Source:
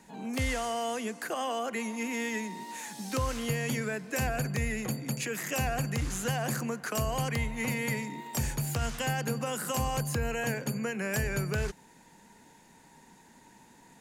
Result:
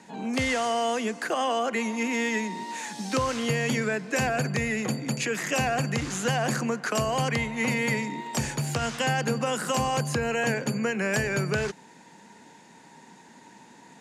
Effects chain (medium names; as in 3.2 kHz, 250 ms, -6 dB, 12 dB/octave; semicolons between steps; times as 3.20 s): band-pass 150–7200 Hz; trim +6.5 dB